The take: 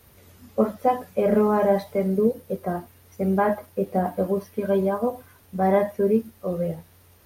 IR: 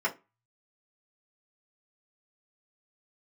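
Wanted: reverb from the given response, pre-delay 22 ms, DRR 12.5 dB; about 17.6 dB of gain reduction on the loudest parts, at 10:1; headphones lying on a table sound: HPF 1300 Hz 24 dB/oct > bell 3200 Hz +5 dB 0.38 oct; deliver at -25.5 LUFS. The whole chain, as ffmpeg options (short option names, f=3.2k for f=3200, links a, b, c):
-filter_complex "[0:a]acompressor=threshold=-33dB:ratio=10,asplit=2[a][b];[1:a]atrim=start_sample=2205,adelay=22[c];[b][c]afir=irnorm=-1:irlink=0,volume=-22dB[d];[a][d]amix=inputs=2:normalize=0,highpass=f=1.3k:w=0.5412,highpass=f=1.3k:w=1.3066,equalizer=f=3.2k:t=o:w=0.38:g=5,volume=29.5dB"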